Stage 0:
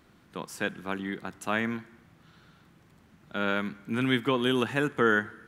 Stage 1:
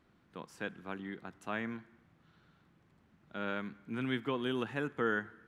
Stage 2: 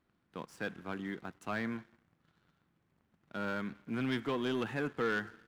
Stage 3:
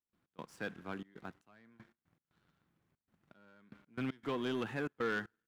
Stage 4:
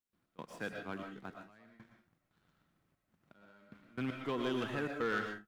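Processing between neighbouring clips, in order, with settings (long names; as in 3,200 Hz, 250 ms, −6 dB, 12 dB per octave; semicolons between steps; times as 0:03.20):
low-pass filter 3,400 Hz 6 dB per octave; level −8.5 dB
leveller curve on the samples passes 2; level −4.5 dB
gate pattern ".x.xxxxx.xx...x" 117 BPM −24 dB; level −2.5 dB
convolution reverb, pre-delay 80 ms, DRR 2.5 dB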